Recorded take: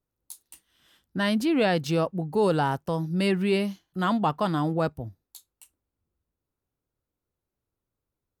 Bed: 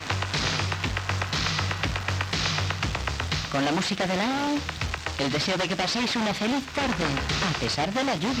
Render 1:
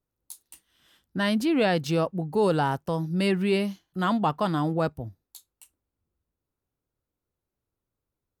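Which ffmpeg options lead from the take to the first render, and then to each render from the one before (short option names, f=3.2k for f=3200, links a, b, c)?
-af anull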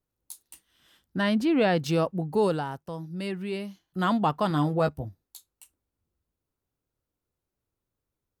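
-filter_complex "[0:a]asettb=1/sr,asplit=3[a][b][c];[a]atrim=end=1.214[d];[b]atrim=start=1.21:end=1.83,asetpts=PTS-STARTPTS,afade=t=in:d=0.004:c=qsin,afade=t=out:st=0.616:d=0.004:c=qsin,aemphasis=mode=reproduction:type=cd[e];[c]atrim=start=1.826[f];[d][e]acrossfade=d=0.004:c1=hsin:c2=qsin[g];[g][f]acrossfade=d=0.004:c1=qsin:c2=hsin,asettb=1/sr,asplit=3[h][i][j];[h]atrim=end=4.494[k];[i]atrim=start=4.49:end=5.05,asetpts=PTS-STARTPTS,afade=t=in:d=0.004:c=qsin,afade=t=out:st=0.556:d=0.004:c=qsin,asplit=2[l][m];[m]adelay=14,volume=-6.5dB[n];[l][n]amix=inputs=2:normalize=0,atrim=end_sample=24696[o];[j]atrim=start=5.046[p];[k][o]acrossfade=d=0.004:c1=hsin:c2=qsin[q];[q][p]acrossfade=d=0.004:c1=qsin:c2=hsin,asplit=3[r][s][t];[r]atrim=end=2.65,asetpts=PTS-STARTPTS,afade=t=out:st=2.39:d=0.26:silence=0.375837[u];[s]atrim=start=2.65:end=3.72,asetpts=PTS-STARTPTS,volume=-8.5dB[v];[t]atrim=start=3.72,asetpts=PTS-STARTPTS,afade=t=in:d=0.26:silence=0.375837[w];[u][v][w]concat=n=3:v=0:a=1"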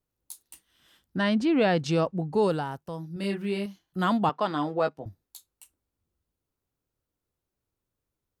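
-filter_complex "[0:a]asettb=1/sr,asplit=3[a][b][c];[a]atrim=end=1.174[d];[b]atrim=start=1.17:end=2.49,asetpts=PTS-STARTPTS,afade=t=in:d=0.004:c=qsin,afade=t=out:st=1.316:d=0.004:c=qsin,lowpass=f=8.6k:w=0.5412,lowpass=f=8.6k:w=1.3066[e];[c]atrim=start=2.486[f];[d][e]acrossfade=d=0.004:c1=hsin:c2=qsin[g];[g][f]acrossfade=d=0.004:c1=qsin:c2=hsin,asettb=1/sr,asplit=3[h][i][j];[h]atrim=end=3.134[k];[i]atrim=start=3.13:end=3.66,asetpts=PTS-STARTPTS,afade=t=in:d=0.004:c=qsin,afade=t=out:st=0.526:d=0.004:c=qsin,asplit=2[l][m];[m]adelay=30,volume=-3dB[n];[l][n]amix=inputs=2:normalize=0,atrim=end_sample=23373[o];[j]atrim=start=3.656[p];[k][o]acrossfade=d=0.004:c1=hsin:c2=qsin[q];[q][p]acrossfade=d=0.004:c1=qsin:c2=hsin,asettb=1/sr,asplit=3[r][s][t];[r]atrim=end=4.294[u];[s]atrim=start=4.29:end=5.06,asetpts=PTS-STARTPTS,afade=t=in:d=0.004:c=qsin,afade=t=out:st=0.766:d=0.004:c=qsin,highpass=300,lowpass=5.4k[v];[t]atrim=start=5.056[w];[u][v]acrossfade=d=0.004:c1=hsin:c2=qsin[x];[x][w]acrossfade=d=0.004:c1=qsin:c2=hsin"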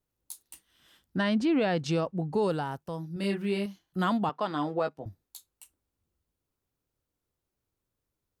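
-af "alimiter=limit=-19dB:level=0:latency=1:release=277"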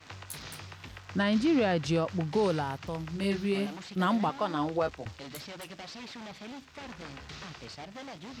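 -filter_complex "[1:a]volume=-18dB[a];[0:a][a]amix=inputs=2:normalize=0"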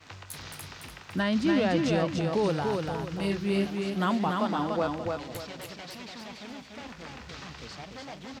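-af "aecho=1:1:291|582|873|1164:0.668|0.221|0.0728|0.024"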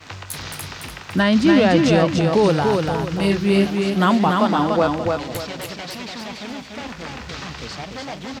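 -af "volume=10.5dB"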